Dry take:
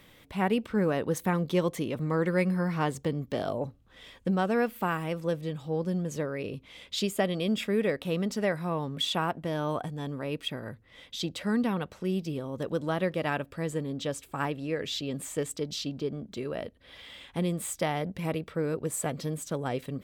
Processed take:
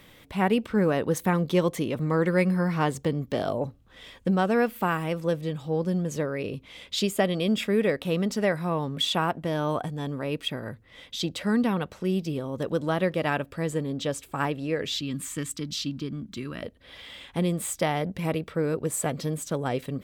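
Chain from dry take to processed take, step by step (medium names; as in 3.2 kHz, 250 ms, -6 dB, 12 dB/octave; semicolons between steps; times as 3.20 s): 14.97–16.63 s: high-order bell 580 Hz -13 dB 1.3 oct; trim +3.5 dB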